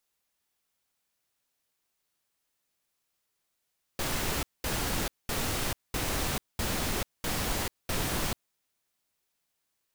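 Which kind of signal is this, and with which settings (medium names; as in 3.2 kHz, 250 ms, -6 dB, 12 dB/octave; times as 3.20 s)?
noise bursts pink, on 0.44 s, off 0.21 s, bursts 7, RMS -30.5 dBFS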